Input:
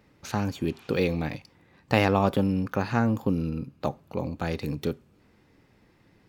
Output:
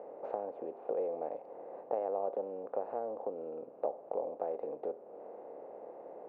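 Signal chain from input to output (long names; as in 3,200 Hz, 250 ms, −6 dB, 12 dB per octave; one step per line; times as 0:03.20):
compressor on every frequency bin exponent 0.6
downward compressor 3 to 1, threshold −32 dBFS, peak gain reduction 13.5 dB
flat-topped band-pass 580 Hz, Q 1.8
level +3 dB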